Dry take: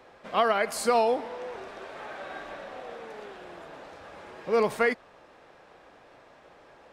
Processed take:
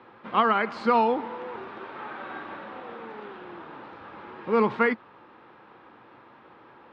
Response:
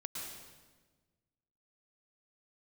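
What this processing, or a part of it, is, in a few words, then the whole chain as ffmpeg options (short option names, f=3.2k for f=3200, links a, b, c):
guitar cabinet: -af "highpass=76,equalizer=f=120:t=q:w=4:g=7,equalizer=f=220:t=q:w=4:g=8,equalizer=f=330:t=q:w=4:g=7,equalizer=f=640:t=q:w=4:g=-8,equalizer=f=930:t=q:w=4:g=7,equalizer=f=1.3k:t=q:w=4:g=6,lowpass=f=3.7k:w=0.5412,lowpass=f=3.7k:w=1.3066"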